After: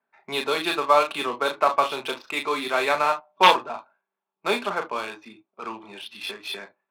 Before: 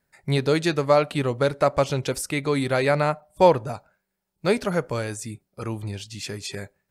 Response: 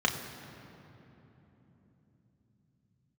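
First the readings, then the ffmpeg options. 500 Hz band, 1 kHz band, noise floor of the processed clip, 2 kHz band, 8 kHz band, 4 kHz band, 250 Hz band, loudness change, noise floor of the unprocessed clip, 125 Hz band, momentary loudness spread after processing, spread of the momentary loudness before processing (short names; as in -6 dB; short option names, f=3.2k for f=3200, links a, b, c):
-4.5 dB, +4.5 dB, under -85 dBFS, +3.5 dB, -5.5 dB, +6.0 dB, -8.5 dB, 0.0 dB, -80 dBFS, under -20 dB, 19 LU, 15 LU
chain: -filter_complex "[0:a]aeval=exprs='(mod(1.88*val(0)+1,2)-1)/1.88':c=same,highpass=f=330:w=0.5412,highpass=f=330:w=1.3066,equalizer=f=430:t=q:w=4:g=-9,equalizer=f=620:t=q:w=4:g=-5,equalizer=f=1.1k:t=q:w=4:g=6,equalizer=f=1.9k:t=q:w=4:g=-8,equalizer=f=3.7k:t=q:w=4:g=8,lowpass=f=4.3k:w=0.5412,lowpass=f=4.3k:w=1.3066[a];[1:a]atrim=start_sample=2205,atrim=end_sample=3087,asetrate=38367,aresample=44100[b];[a][b]afir=irnorm=-1:irlink=0,adynamicsmooth=sensitivity=4:basefreq=1.8k,volume=-7.5dB"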